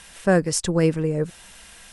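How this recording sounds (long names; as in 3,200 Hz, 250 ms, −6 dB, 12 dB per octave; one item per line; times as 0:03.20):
background noise floor −47 dBFS
spectral slope −5.5 dB per octave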